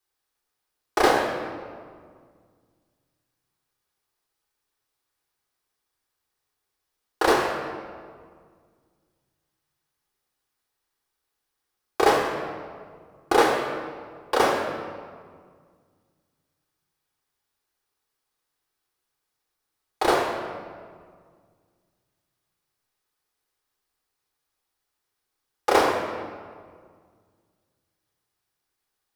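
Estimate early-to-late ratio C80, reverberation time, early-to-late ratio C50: 4.5 dB, 1.9 s, 3.5 dB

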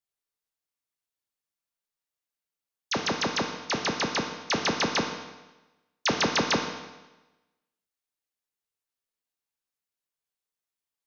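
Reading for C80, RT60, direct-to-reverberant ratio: 7.5 dB, 1.1 s, 1.5 dB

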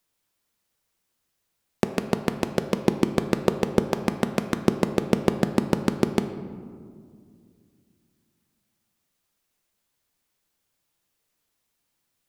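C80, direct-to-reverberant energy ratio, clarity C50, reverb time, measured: 11.5 dB, 8.0 dB, 10.0 dB, 2.2 s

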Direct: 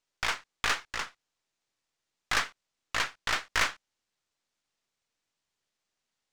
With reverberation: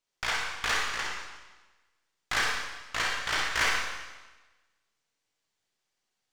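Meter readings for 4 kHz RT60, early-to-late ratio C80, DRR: 1.2 s, 2.5 dB, -3.0 dB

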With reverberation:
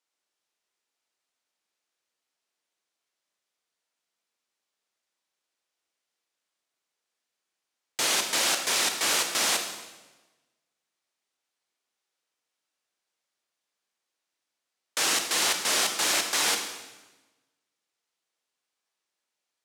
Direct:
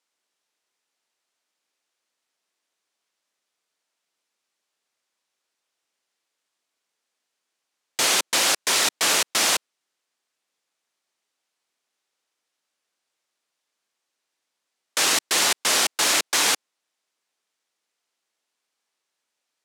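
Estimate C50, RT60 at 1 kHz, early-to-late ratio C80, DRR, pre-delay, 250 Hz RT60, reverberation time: 6.5 dB, 1.1 s, 8.5 dB, 5.0 dB, 25 ms, 1.4 s, 1.2 s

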